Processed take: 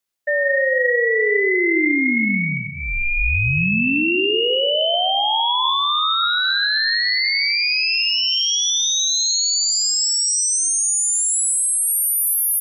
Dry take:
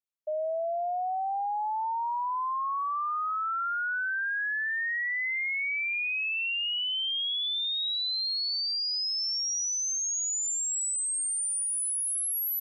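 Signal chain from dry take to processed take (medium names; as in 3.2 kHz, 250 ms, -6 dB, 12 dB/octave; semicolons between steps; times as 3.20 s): high-pass 550 Hz; band-stop 1.1 kHz, Q 5.8; in parallel at +2.5 dB: gain riding within 4 dB; on the sum: ring modulator 1.2 kHz; plate-style reverb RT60 1 s, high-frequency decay 0.95×, pre-delay 115 ms, DRR 8 dB; trim +7 dB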